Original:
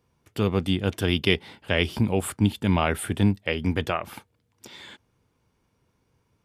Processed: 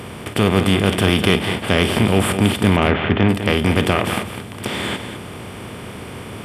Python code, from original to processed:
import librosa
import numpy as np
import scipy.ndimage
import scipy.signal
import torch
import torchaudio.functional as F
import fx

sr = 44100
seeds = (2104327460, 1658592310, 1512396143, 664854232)

y = fx.bin_compress(x, sr, power=0.4)
y = fx.cheby2_lowpass(y, sr, hz=9200.0, order=4, stop_db=60, at=(2.69, 3.28), fade=0.02)
y = fx.echo_multitap(y, sr, ms=(52, 202), db=(-14.5, -10.0))
y = 10.0 ** (-3.0 / 20.0) * np.tanh(y / 10.0 ** (-3.0 / 20.0))
y = F.gain(torch.from_numpy(y), 3.0).numpy()